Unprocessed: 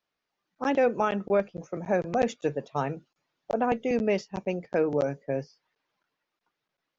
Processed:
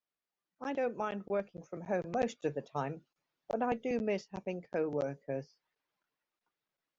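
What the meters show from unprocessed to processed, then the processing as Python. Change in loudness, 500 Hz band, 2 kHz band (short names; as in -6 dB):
-8.5 dB, -8.5 dB, -8.5 dB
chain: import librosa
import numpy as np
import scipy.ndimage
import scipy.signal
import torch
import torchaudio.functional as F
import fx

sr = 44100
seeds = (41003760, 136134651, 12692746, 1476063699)

y = fx.rider(x, sr, range_db=10, speed_s=2.0)
y = y * librosa.db_to_amplitude(-9.0)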